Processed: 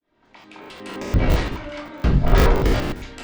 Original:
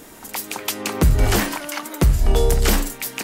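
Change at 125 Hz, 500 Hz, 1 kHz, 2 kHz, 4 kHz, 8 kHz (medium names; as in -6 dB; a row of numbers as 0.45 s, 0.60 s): -0.5 dB, -0.5 dB, 0.0 dB, -2.5 dB, -6.0 dB, -15.0 dB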